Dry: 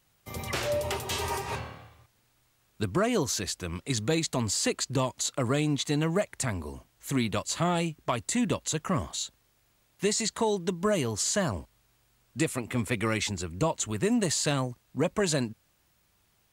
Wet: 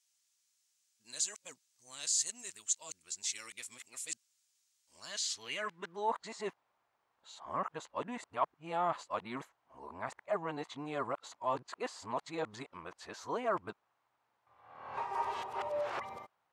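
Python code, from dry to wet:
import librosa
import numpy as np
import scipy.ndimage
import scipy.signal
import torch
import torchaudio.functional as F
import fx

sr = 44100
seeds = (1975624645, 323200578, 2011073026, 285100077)

y = np.flip(x).copy()
y = fx.filter_sweep_bandpass(y, sr, from_hz=6700.0, to_hz=940.0, start_s=4.87, end_s=6.13, q=1.9)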